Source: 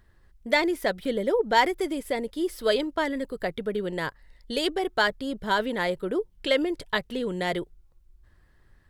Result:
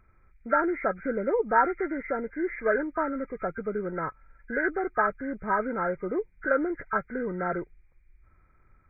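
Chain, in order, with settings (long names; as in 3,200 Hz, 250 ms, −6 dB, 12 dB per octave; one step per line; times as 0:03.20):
hearing-aid frequency compression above 1,200 Hz 4 to 1
level −2 dB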